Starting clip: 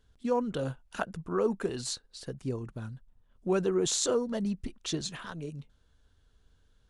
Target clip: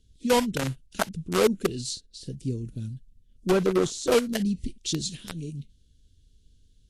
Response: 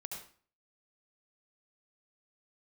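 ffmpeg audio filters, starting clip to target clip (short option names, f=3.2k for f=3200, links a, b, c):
-filter_complex "[0:a]asettb=1/sr,asplit=3[a][b][c];[a]atrim=end=0.864[d];[b]atrim=start=0.86:end=2.3,asetpts=PTS-STARTPTS,afade=t=in:d=0.004:c=qsin,afade=t=out:st=1.436:d=0.004:c=qsin,highshelf=f=5.7k:g=-8[e];[c]atrim=start=2.296[f];[d][e]acrossfade=d=0.004:c1=hsin:c2=qsin[g];[g][f]acrossfade=d=0.004:c1=qsin:c2=hsin,acrossover=split=380|2800[h][i][j];[i]acrusher=bits=4:mix=0:aa=0.000001[k];[h][k][j]amix=inputs=3:normalize=0,asettb=1/sr,asplit=3[l][m][n];[l]atrim=end=3.514[o];[m]atrim=start=3.51:end=4.12,asetpts=PTS-STARTPTS,afade=t=in:d=0.004:c=qsin,afade=t=out:st=0.606:d=0.004:c=qsin,deesser=0.85[p];[n]atrim=start=4.116[q];[o][p]acrossfade=d=0.004:c1=hsin:c2=qsin[r];[r][q]acrossfade=d=0.004:c1=qsin:c2=hsin,volume=6dB" -ar 32000 -c:a libvorbis -b:a 32k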